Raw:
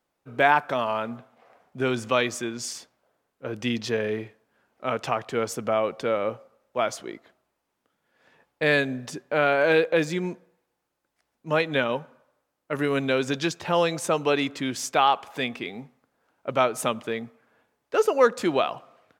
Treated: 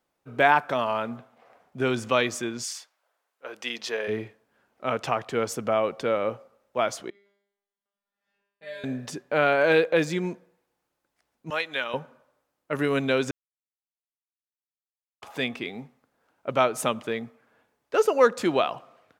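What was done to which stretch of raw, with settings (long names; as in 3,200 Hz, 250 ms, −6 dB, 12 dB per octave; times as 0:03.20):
0:02.63–0:04.07: high-pass filter 1,100 Hz → 480 Hz
0:07.10–0:08.84: tuned comb filter 200 Hz, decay 0.77 s, mix 100%
0:11.50–0:11.94: high-pass filter 1,500 Hz 6 dB per octave
0:13.31–0:15.22: silence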